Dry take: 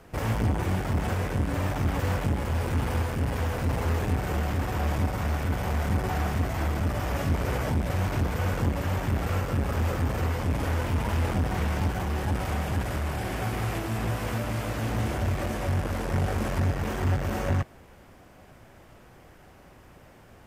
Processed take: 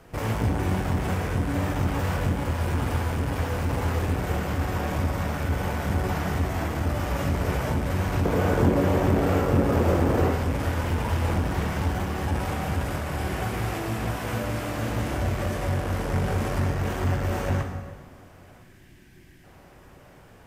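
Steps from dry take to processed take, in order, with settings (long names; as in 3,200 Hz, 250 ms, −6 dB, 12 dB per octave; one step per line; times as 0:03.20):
0:08.25–0:10.31: parametric band 400 Hz +10 dB 2.2 octaves
0:18.62–0:19.44: gain on a spectral selection 390–1,500 Hz −14 dB
dense smooth reverb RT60 1.5 s, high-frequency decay 0.75×, DRR 3.5 dB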